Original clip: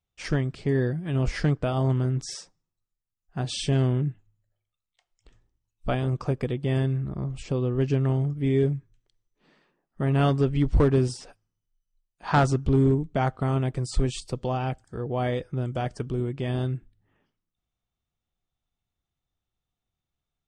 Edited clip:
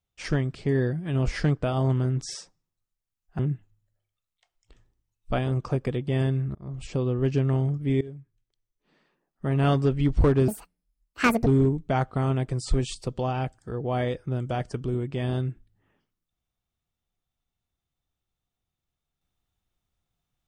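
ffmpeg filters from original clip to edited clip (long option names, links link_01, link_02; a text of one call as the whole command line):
ffmpeg -i in.wav -filter_complex "[0:a]asplit=6[link_01][link_02][link_03][link_04][link_05][link_06];[link_01]atrim=end=3.392[link_07];[link_02]atrim=start=3.948:end=7.11,asetpts=PTS-STARTPTS,afade=type=out:start_time=3.158:duration=0.004:curve=hsin[link_08];[link_03]atrim=start=7.11:end=8.57,asetpts=PTS-STARTPTS,afade=type=in:duration=0.27,afade=type=out:start_time=1.456:duration=0.004:curve=hsin:silence=0.105925[link_09];[link_04]atrim=start=8.57:end=11.044,asetpts=PTS-STARTPTS,afade=type=in:duration=1.7:silence=0.105925[link_10];[link_05]atrim=start=11.04:end=12.72,asetpts=PTS-STARTPTS,asetrate=75411,aresample=44100,atrim=end_sample=43326,asetpts=PTS-STARTPTS[link_11];[link_06]atrim=start=12.716[link_12];[link_08][link_09][link_10]concat=n=3:v=0:a=1[link_13];[link_07][link_13]acrossfade=duration=0.004:curve1=hsin:curve2=hsin[link_14];[link_14][link_11]acrossfade=duration=0.004:curve1=hsin:curve2=hsin[link_15];[link_15][link_12]acrossfade=duration=0.004:curve1=hsin:curve2=hsin" out.wav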